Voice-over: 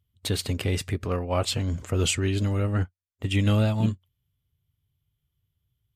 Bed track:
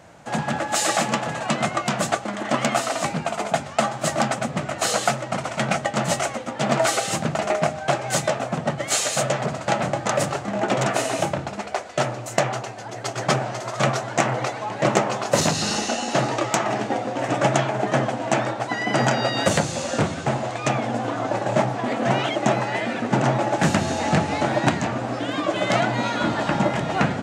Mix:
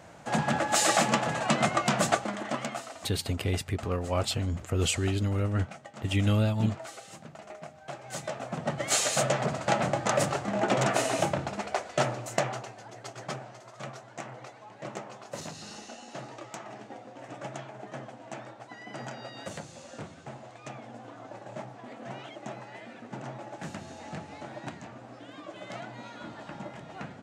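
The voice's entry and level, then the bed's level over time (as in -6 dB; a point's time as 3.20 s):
2.80 s, -3.0 dB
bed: 2.19 s -2.5 dB
3.11 s -22.5 dB
7.69 s -22.5 dB
8.88 s -4 dB
12.08 s -4 dB
13.71 s -20 dB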